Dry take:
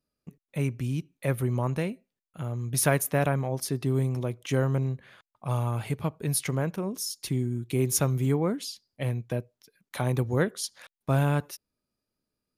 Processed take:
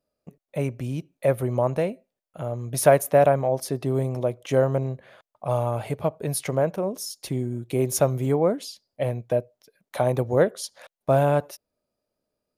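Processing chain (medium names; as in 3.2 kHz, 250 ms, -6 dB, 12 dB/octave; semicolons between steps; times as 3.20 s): peaking EQ 610 Hz +14 dB 0.99 oct; trim -1 dB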